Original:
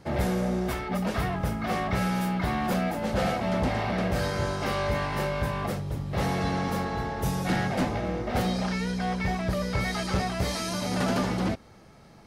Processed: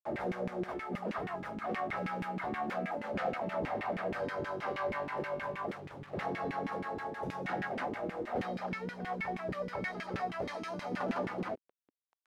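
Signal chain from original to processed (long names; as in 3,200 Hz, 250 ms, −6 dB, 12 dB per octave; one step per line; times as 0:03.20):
bit reduction 7 bits
auto-filter band-pass saw down 6.3 Hz 240–2,400 Hz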